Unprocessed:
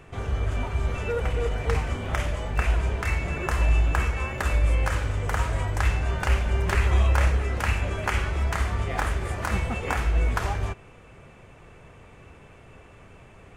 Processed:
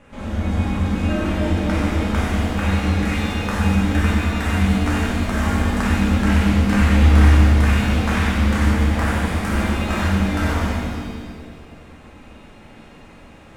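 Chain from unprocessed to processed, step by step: two-band feedback delay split 640 Hz, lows 210 ms, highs 94 ms, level -6 dB; ring modulator 140 Hz; pitch-shifted reverb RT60 1.4 s, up +7 st, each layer -8 dB, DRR -5.5 dB

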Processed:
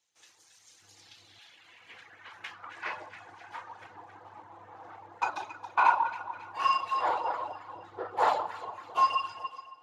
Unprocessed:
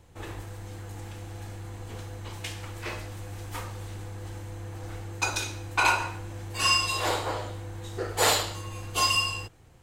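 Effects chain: 2.70–3.81 s: time-frequency box 1.4–9.6 kHz +8 dB; 7.75–8.59 s: tilt shelf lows +3 dB, about 800 Hz; echo whose repeats swap between lows and highs 137 ms, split 1.2 kHz, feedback 67%, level -5 dB; level rider gain up to 5.5 dB; high-pass 73 Hz 24 dB/octave; 0.82–1.39 s: bass shelf 310 Hz +11 dB; reverb removal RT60 1.1 s; FDN reverb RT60 2.9 s, high-frequency decay 0.7×, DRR 18.5 dB; 3.27–3.75 s: compression 2:1, threshold -34 dBFS, peak gain reduction 6 dB; band-pass sweep 6.1 kHz -> 950 Hz, 0.74–2.93 s; Speex 36 kbps 32 kHz

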